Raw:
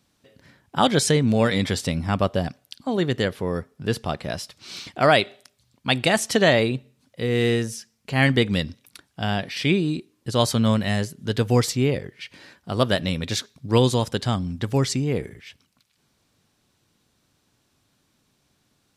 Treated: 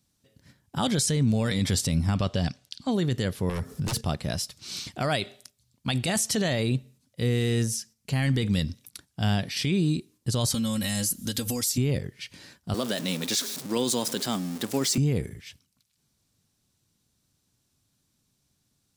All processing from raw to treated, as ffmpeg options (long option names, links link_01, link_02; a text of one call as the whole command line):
ffmpeg -i in.wav -filter_complex "[0:a]asettb=1/sr,asplit=3[link_01][link_02][link_03];[link_01]atrim=end=2.154[link_04];[link_02]atrim=start=2.15:end=2.91,asetpts=PTS-STARTPTS,afade=type=in:duration=0.004:curve=qsin,afade=type=out:start_time=0.756:duration=0.004:curve=qsin,lowpass=4200,highshelf=frequency=2300:gain=12[link_05];[link_03]atrim=start=2.906[link_06];[link_04][link_05]acrossfade=duration=0.004:curve1=hsin:curve2=qsin[link_07];[link_07][link_06]acrossfade=duration=0.004:curve1=qsin:curve2=hsin,asettb=1/sr,asplit=3[link_08][link_09][link_10];[link_08]atrim=end=3.494[link_11];[link_09]atrim=start=3.49:end=4.01,asetpts=PTS-STARTPTS,afade=type=in:duration=0.004:curve=qsin,afade=type=out:start_time=0.516:duration=0.004:curve=qsin,aeval=exprs='0.316*sin(PI/2*5.62*val(0)/0.316)':channel_layout=same,acompressor=threshold=-30dB:ratio=5:attack=3.2:release=140:knee=1:detection=peak[link_12];[link_10]atrim=start=4.006[link_13];[link_11][link_12]acrossfade=duration=0.004:curve1=hsin:curve2=qsin[link_14];[link_14][link_13]acrossfade=duration=0.004:curve1=qsin:curve2=hsin,asettb=1/sr,asplit=3[link_15][link_16][link_17];[link_15]atrim=end=10.544[link_18];[link_16]atrim=start=10.54:end=11.78,asetpts=PTS-STARTPTS,afade=type=in:duration=0.004:curve=qsin,afade=type=out:start_time=1.236:duration=0.004:curve=qsin,aemphasis=mode=production:type=75kf,aecho=1:1:3.7:0.9,atrim=end_sample=54684,acompressor=threshold=-24dB:ratio=16:attack=3.2:release=140:knee=1:detection=peak[link_19];[link_17]atrim=start=11.776[link_20];[link_18][link_19]acrossfade=duration=0.004:curve1=hsin:curve2=qsin[link_21];[link_21][link_20]acrossfade=duration=0.004:curve1=qsin:curve2=hsin,asettb=1/sr,asplit=3[link_22][link_23][link_24];[link_22]atrim=end=12.744[link_25];[link_23]atrim=start=12.74:end=14.98,asetpts=PTS-STARTPTS,afade=type=in:duration=0.004:curve=qsin,afade=type=out:start_time=2.236:duration=0.004:curve=qsin,aeval=exprs='val(0)+0.5*0.0299*sgn(val(0))':channel_layout=same,highpass=frequency=220:width=0.5412,highpass=frequency=220:width=1.3066[link_26];[link_24]atrim=start=14.976[link_27];[link_25][link_26]acrossfade=duration=0.004:curve1=hsin:curve2=qsin[link_28];[link_28][link_27]acrossfade=duration=0.004:curve1=qsin:curve2=hsin,agate=range=-7dB:threshold=-51dB:ratio=16:detection=peak,bass=frequency=250:gain=9,treble=frequency=4000:gain=11,alimiter=limit=-11dB:level=0:latency=1:release=23,volume=-5dB" out.wav